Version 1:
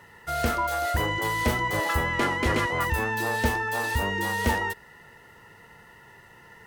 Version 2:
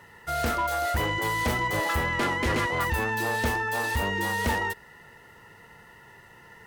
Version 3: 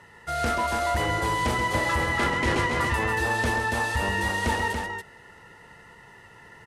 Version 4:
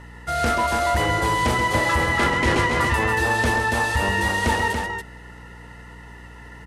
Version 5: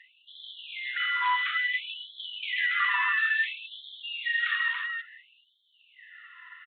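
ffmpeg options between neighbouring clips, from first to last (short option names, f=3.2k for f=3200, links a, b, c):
-af "asoftclip=type=hard:threshold=-21dB"
-filter_complex "[0:a]lowpass=f=11k:w=0.5412,lowpass=f=11k:w=1.3066,asplit=2[a][b];[b]aecho=0:1:134.1|282.8:0.398|0.562[c];[a][c]amix=inputs=2:normalize=0"
-af "aeval=exprs='val(0)+0.00501*(sin(2*PI*60*n/s)+sin(2*PI*2*60*n/s)/2+sin(2*PI*3*60*n/s)/3+sin(2*PI*4*60*n/s)/4+sin(2*PI*5*60*n/s)/5)':c=same,volume=4.5dB"
-af "aresample=8000,aresample=44100,afftfilt=real='re*gte(b*sr/1024,970*pow(3100/970,0.5+0.5*sin(2*PI*0.58*pts/sr)))':imag='im*gte(b*sr/1024,970*pow(3100/970,0.5+0.5*sin(2*PI*0.58*pts/sr)))':win_size=1024:overlap=0.75,volume=-1.5dB"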